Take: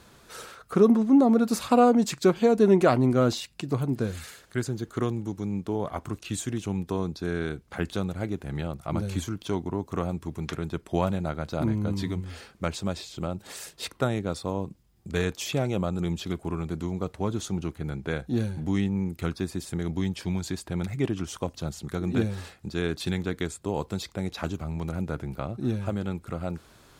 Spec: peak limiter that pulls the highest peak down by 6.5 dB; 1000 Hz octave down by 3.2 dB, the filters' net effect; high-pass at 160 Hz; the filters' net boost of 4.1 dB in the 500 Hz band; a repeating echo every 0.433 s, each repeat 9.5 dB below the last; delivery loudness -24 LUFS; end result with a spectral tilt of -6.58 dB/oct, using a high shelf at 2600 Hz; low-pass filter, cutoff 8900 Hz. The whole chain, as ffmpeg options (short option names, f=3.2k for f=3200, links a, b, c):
-af "highpass=160,lowpass=8.9k,equalizer=f=500:t=o:g=7,equalizer=f=1k:t=o:g=-8.5,highshelf=f=2.6k:g=-5,alimiter=limit=-12dB:level=0:latency=1,aecho=1:1:433|866|1299|1732:0.335|0.111|0.0365|0.012,volume=4dB"